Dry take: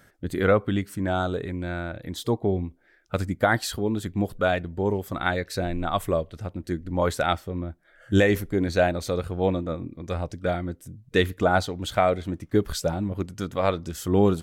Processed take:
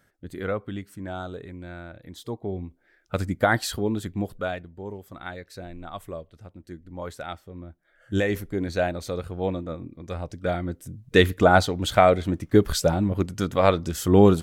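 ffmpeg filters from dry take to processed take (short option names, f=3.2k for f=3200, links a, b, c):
-af "volume=16.5dB,afade=t=in:st=2.39:d=0.9:silence=0.354813,afade=t=out:st=3.83:d=0.88:silence=0.251189,afade=t=in:st=7.39:d=1.06:silence=0.398107,afade=t=in:st=10.2:d=1.02:silence=0.398107"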